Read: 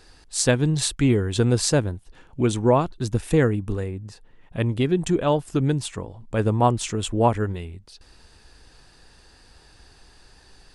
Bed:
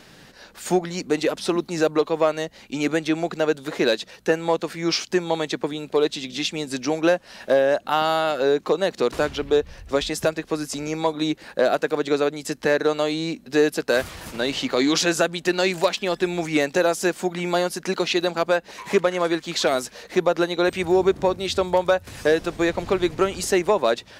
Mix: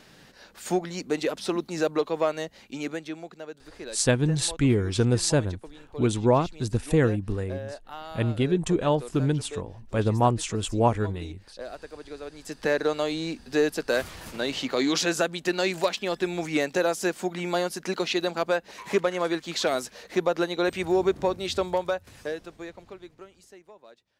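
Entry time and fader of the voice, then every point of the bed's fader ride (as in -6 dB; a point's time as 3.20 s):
3.60 s, -2.5 dB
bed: 2.58 s -5 dB
3.47 s -19 dB
12.20 s -19 dB
12.65 s -4.5 dB
21.62 s -4.5 dB
23.61 s -31 dB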